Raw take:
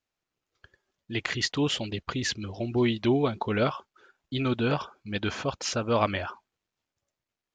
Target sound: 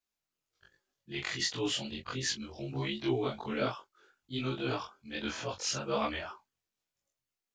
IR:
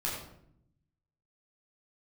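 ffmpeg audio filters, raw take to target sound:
-af "afftfilt=real='re':imag='-im':win_size=2048:overlap=0.75,highshelf=f=4.4k:g=9.5,flanger=delay=17:depth=5.6:speed=1.3"

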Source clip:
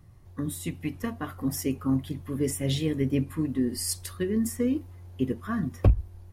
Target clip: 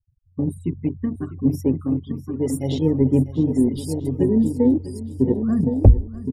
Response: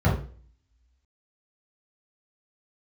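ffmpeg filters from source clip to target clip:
-filter_complex "[0:a]asettb=1/sr,asplit=3[a][b][c];[a]atrim=end=1.814[d];[b]atrim=start=1.81:end=2.79,asetpts=PTS-STARTPTS,afade=t=in:d=0.004:c=qsin,afade=t=out:st=0.976:d=0.004:c=qsin,tiltshelf=f=840:g=-6.5[e];[c]atrim=start=2.786[f];[d][e]acrossfade=d=0.004:c1=hsin:c2=qsin[g];[g][f]acrossfade=d=0.004:c1=qsin:c2=hsin,asplit=2[h][i];[i]aecho=0:1:1065:0.447[j];[h][j]amix=inputs=2:normalize=0,afftfilt=real='re*gte(hypot(re,im),0.0251)':imag='im*gte(hypot(re,im),0.0251)':win_size=1024:overlap=0.75,afwtdn=0.0398,asplit=2[k][l];[l]aecho=0:1:648|1296|1944|2592:0.158|0.0713|0.0321|0.0144[m];[k][m]amix=inputs=2:normalize=0,volume=8.5dB"

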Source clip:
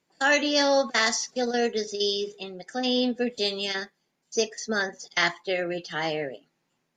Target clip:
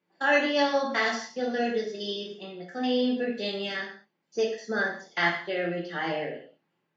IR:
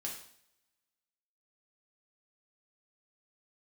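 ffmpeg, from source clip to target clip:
-filter_complex "[0:a]highpass=120,lowpass=2.8k[a];[1:a]atrim=start_sample=2205,afade=t=out:st=0.26:d=0.01,atrim=end_sample=11907[b];[a][b]afir=irnorm=-1:irlink=0"

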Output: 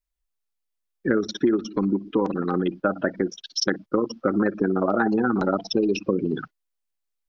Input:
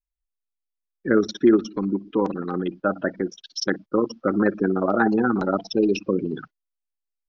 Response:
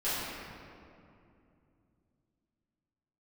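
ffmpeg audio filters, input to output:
-af "acompressor=threshold=-22dB:ratio=5,volume=4dB"

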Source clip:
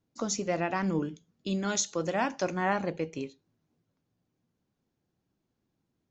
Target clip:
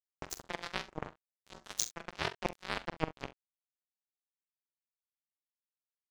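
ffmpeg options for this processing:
-af "areverse,acompressor=threshold=-38dB:ratio=6,areverse,acrusher=bits=4:mix=0:aa=0.5,aeval=exprs='val(0)*sin(2*PI*160*n/s)':c=same,aecho=1:1:44|67:0.237|0.106,volume=13dB"

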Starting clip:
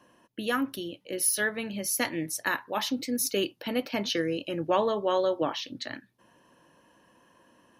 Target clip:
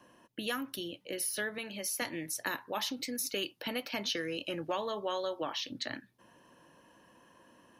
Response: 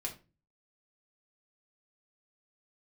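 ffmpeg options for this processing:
-filter_complex "[0:a]asettb=1/sr,asplit=3[a][b][c];[a]atrim=end=1.584[d];[b]atrim=start=1.58:end=2.02,asetpts=PTS-STARTPTS,afade=t=in:d=0.004:c=qsin,afade=t=out:st=0.436:d=0.004:c=qsin,highpass=f=560:p=1[e];[c]atrim=start=2.016[f];[d][e]acrossfade=d=0.004:c1=hsin:c2=qsin[g];[g][f]acrossfade=d=0.004:c1=qsin:c2=hsin,acrossover=split=750|3500[h][i][j];[h]acompressor=threshold=-39dB:ratio=4[k];[i]acompressor=threshold=-37dB:ratio=4[l];[j]acompressor=threshold=-35dB:ratio=4[m];[k][l][m]amix=inputs=3:normalize=0,asplit=3[n][o][p];[n]afade=t=out:st=4.2:d=0.02[q];[o]aeval=exprs='0.0708*(cos(1*acos(clip(val(0)/0.0708,-1,1)))-cos(1*PI/2))+0.00224*(cos(5*acos(clip(val(0)/0.0708,-1,1)))-cos(5*PI/2))':c=same,afade=t=in:st=4.2:d=0.02,afade=t=out:st=4.71:d=0.02[r];[p]afade=t=in:st=4.71:d=0.02[s];[q][r][s]amix=inputs=3:normalize=0"

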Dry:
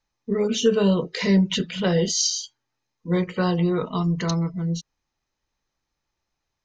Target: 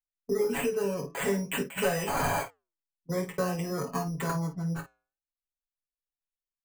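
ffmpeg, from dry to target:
-filter_complex "[0:a]agate=range=-16dB:threshold=-31dB:ratio=16:detection=peak,asettb=1/sr,asplit=3[a][b][c];[a]atrim=end=0.584[d];[b]atrim=start=0.58:end=1.21,asetpts=PTS-STARTPTS,afade=t=in:d=0.004:c=qsin,afade=t=out:st=0.626:d=0.004:c=qsin,acompressor=threshold=-23dB:ratio=6[e];[c]atrim=start=1.206[f];[d][e]acrossfade=d=0.004:c1=hsin:c2=qsin[g];[g][f]acrossfade=d=0.004:c1=qsin:c2=hsin,asettb=1/sr,asplit=3[h][i][j];[h]atrim=end=1.774[k];[i]atrim=start=1.77:end=2.43,asetpts=PTS-STARTPTS,afade=t=in:d=0.004:c=qsin,afade=t=out:st=0.656:d=0.004:c=qsin,asplit=2[l][m];[m]highpass=f=720:p=1,volume=16dB,asoftclip=type=tanh:threshold=-8dB[n];[l][n]amix=inputs=2:normalize=0,lowpass=f=5.2k:p=1,volume=-6dB[o];[j]atrim=start=2.426[p];[k][o]acrossfade=d=0.004:c1=hsin:c2=qsin[q];[q][p]acrossfade=d=0.004:c1=qsin:c2=hsin,acrossover=split=180|4700[r][s][t];[r]acompressor=threshold=-38dB:ratio=4[u];[s]acompressor=threshold=-24dB:ratio=4[v];[t]acompressor=threshold=-35dB:ratio=4[w];[u][v][w]amix=inputs=3:normalize=0,acrusher=samples=8:mix=1:aa=0.000001,anlmdn=0.1,aecho=1:1:7.2:0.83,aecho=1:1:20|50:0.376|0.266,flanger=delay=1.2:depth=7.4:regen=-87:speed=0.5:shape=sinusoidal,equalizer=f=3.7k:t=o:w=0.45:g=-13.5"

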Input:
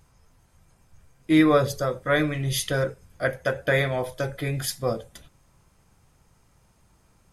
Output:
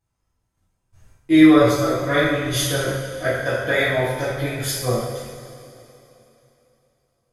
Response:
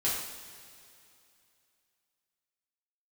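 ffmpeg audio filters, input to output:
-filter_complex "[0:a]agate=range=-20dB:threshold=-53dB:ratio=16:detection=peak[a];[1:a]atrim=start_sample=2205,asetrate=38367,aresample=44100[b];[a][b]afir=irnorm=-1:irlink=0,volume=-3.5dB"

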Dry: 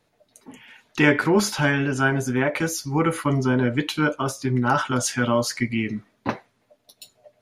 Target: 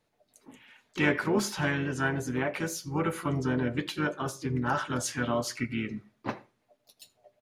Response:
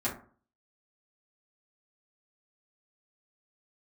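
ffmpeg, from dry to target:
-filter_complex "[0:a]asplit=3[a][b][c];[b]asetrate=29433,aresample=44100,atempo=1.49831,volume=-16dB[d];[c]asetrate=52444,aresample=44100,atempo=0.840896,volume=-10dB[e];[a][d][e]amix=inputs=3:normalize=0,asplit=2[f][g];[1:a]atrim=start_sample=2205,asetrate=66150,aresample=44100,adelay=77[h];[g][h]afir=irnorm=-1:irlink=0,volume=-26dB[i];[f][i]amix=inputs=2:normalize=0,volume=-8.5dB"

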